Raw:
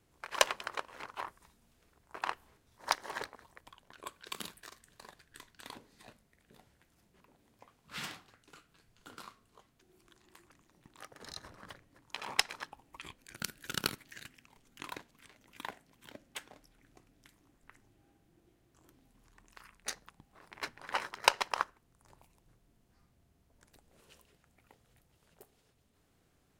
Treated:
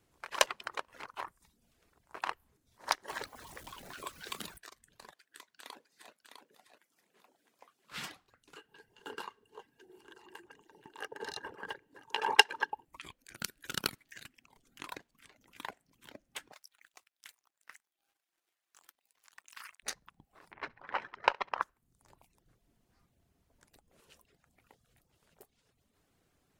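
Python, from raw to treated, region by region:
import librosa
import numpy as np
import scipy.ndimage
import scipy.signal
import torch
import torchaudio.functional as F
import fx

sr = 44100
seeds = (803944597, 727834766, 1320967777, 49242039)

y = fx.chain(x, sr, fx.zero_step(step_db=-47.0),
    fx.band_squash(depth_pct=40), at=(3.08, 4.58))
y = fx.chain(y, sr, fx.highpass(hz=350.0, slope=12),
    fx.echo_single(ms=655, db=-6.0), at=(5.12, 7.92))
y = fx.chain(y, sr, fx.low_shelf(hz=62.0, db=-12.0),
    fx.small_body(hz=(430.0, 870.0, 1600.0, 2800.0), ring_ms=30, db=18),
    fx.echo_single(ms=988, db=-19.0), at=(8.56, 12.85))
y = fx.chain(y, sr, fx.highpass(hz=1200.0, slope=12),
    fx.leveller(passes=3), at=(16.52, 19.83))
y = fx.chain(y, sr, fx.lowpass(hz=2300.0, slope=12),
    fx.echo_feedback(ms=67, feedback_pct=37, wet_db=-14.0), at=(20.52, 21.62))
y = fx.dereverb_blind(y, sr, rt60_s=0.56)
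y = fx.low_shelf(y, sr, hz=200.0, db=-3.0)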